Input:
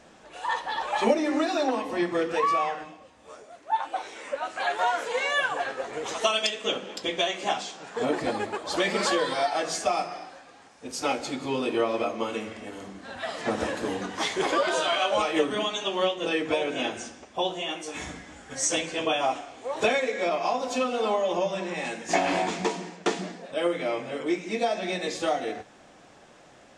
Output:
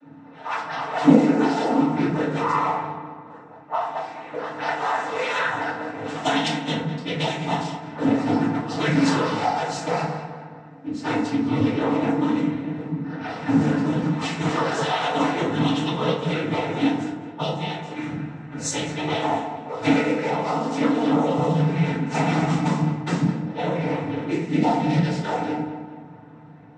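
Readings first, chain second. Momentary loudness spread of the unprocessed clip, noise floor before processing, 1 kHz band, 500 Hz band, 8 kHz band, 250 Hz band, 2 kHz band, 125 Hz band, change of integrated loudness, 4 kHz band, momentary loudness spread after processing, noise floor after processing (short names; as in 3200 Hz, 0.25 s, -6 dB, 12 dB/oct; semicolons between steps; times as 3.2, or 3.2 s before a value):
11 LU, -53 dBFS, +3.0 dB, +0.5 dB, -3.0 dB, +11.0 dB, +1.0 dB, +19.0 dB, +4.0 dB, -1.5 dB, 11 LU, -43 dBFS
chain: low-pass opened by the level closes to 1700 Hz, open at -21.5 dBFS; resonant low shelf 270 Hz +8 dB, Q 3; noise vocoder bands 12; on a send: darkening echo 0.211 s, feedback 53%, low-pass 2700 Hz, level -12 dB; on the sum: FDN reverb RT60 0.66 s, low-frequency decay 0.95×, high-frequency decay 0.45×, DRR -10 dB; gain -8 dB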